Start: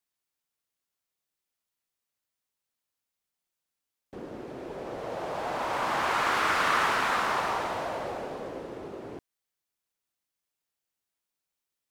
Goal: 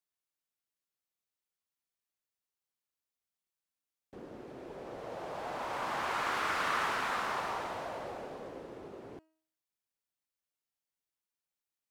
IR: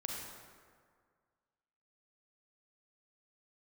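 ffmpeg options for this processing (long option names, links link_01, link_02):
-af "bandreject=frequency=317.3:width_type=h:width=4,bandreject=frequency=634.6:width_type=h:width=4,bandreject=frequency=951.9:width_type=h:width=4,bandreject=frequency=1269.2:width_type=h:width=4,bandreject=frequency=1586.5:width_type=h:width=4,bandreject=frequency=1903.8:width_type=h:width=4,bandreject=frequency=2221.1:width_type=h:width=4,bandreject=frequency=2538.4:width_type=h:width=4,bandreject=frequency=2855.7:width_type=h:width=4,bandreject=frequency=3173:width_type=h:width=4,bandreject=frequency=3490.3:width_type=h:width=4,bandreject=frequency=3807.6:width_type=h:width=4,bandreject=frequency=4124.9:width_type=h:width=4,bandreject=frequency=4442.2:width_type=h:width=4,bandreject=frequency=4759.5:width_type=h:width=4,bandreject=frequency=5076.8:width_type=h:width=4,bandreject=frequency=5394.1:width_type=h:width=4,bandreject=frequency=5711.4:width_type=h:width=4,bandreject=frequency=6028.7:width_type=h:width=4,bandreject=frequency=6346:width_type=h:width=4,bandreject=frequency=6663.3:width_type=h:width=4,bandreject=frequency=6980.6:width_type=h:width=4,bandreject=frequency=7297.9:width_type=h:width=4,bandreject=frequency=7615.2:width_type=h:width=4,bandreject=frequency=7932.5:width_type=h:width=4,bandreject=frequency=8249.8:width_type=h:width=4,bandreject=frequency=8567.1:width_type=h:width=4,bandreject=frequency=8884.4:width_type=h:width=4,bandreject=frequency=9201.7:width_type=h:width=4,bandreject=frequency=9519:width_type=h:width=4,bandreject=frequency=9836.3:width_type=h:width=4,bandreject=frequency=10153.6:width_type=h:width=4,volume=-7dB"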